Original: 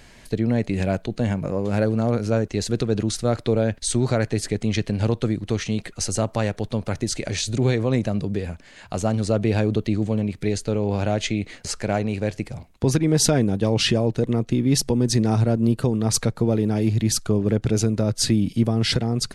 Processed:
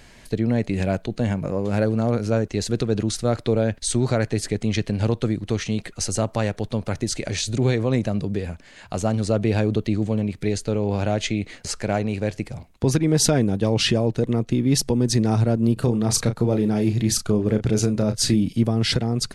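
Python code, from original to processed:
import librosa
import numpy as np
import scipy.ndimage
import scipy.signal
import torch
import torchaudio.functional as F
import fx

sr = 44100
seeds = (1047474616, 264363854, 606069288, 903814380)

y = fx.doubler(x, sr, ms=33.0, db=-8.5, at=(15.76, 18.43), fade=0.02)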